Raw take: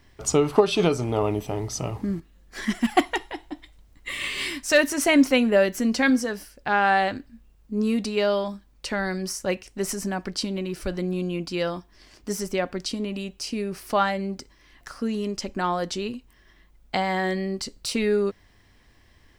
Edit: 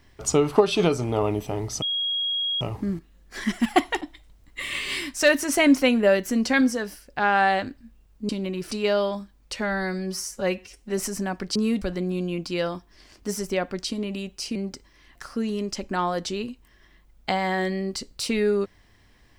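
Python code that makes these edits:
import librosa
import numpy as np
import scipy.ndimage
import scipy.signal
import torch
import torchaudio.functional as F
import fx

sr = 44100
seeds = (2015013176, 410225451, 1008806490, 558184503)

y = fx.edit(x, sr, fx.insert_tone(at_s=1.82, length_s=0.79, hz=3290.0, db=-23.0),
    fx.cut(start_s=3.22, length_s=0.28),
    fx.swap(start_s=7.78, length_s=0.26, other_s=10.41, other_length_s=0.42),
    fx.stretch_span(start_s=8.89, length_s=0.95, factor=1.5),
    fx.cut(start_s=13.57, length_s=0.64), tone=tone)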